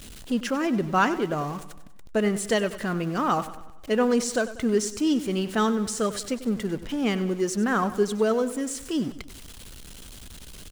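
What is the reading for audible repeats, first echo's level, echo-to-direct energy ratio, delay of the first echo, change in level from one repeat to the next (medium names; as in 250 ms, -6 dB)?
4, -14.5 dB, -13.0 dB, 96 ms, -6.0 dB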